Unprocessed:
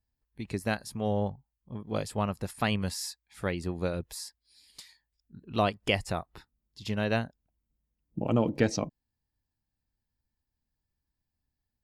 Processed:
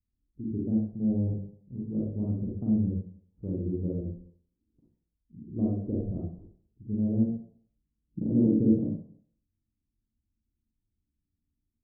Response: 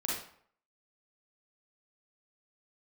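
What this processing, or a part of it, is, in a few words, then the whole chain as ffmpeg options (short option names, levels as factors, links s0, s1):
next room: -filter_complex "[0:a]lowpass=f=350:w=0.5412,lowpass=f=350:w=1.3066[s0];[1:a]atrim=start_sample=2205[s1];[s0][s1]afir=irnorm=-1:irlink=0"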